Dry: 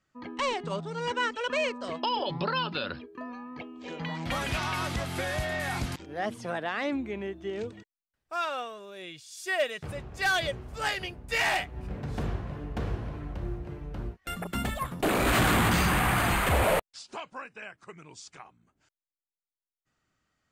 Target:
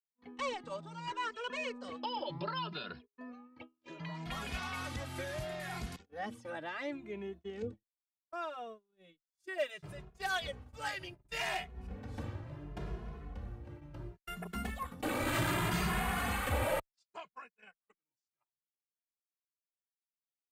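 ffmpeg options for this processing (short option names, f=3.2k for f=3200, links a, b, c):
-filter_complex "[0:a]agate=range=-42dB:threshold=-40dB:ratio=16:detection=peak,asettb=1/sr,asplit=3[a][b][c];[a]atrim=end=7.624[d];[b]atrim=start=7.62:end=9.58,asetpts=PTS-STARTPTS,afade=t=in:d=0.004:c=qsin,afade=t=out:st=1.956:d=0.004:c=qsin,tiltshelf=f=820:g=7.5[e];[c]atrim=start=9.576[f];[d][e]acrossfade=d=0.004:c1=hsin:c2=qsin[g];[g][f]acrossfade=d=0.004:c1=qsin:c2=hsin,asplit=2[h][i];[i]adelay=2.4,afreqshift=0.69[j];[h][j]amix=inputs=2:normalize=1,volume=-6dB"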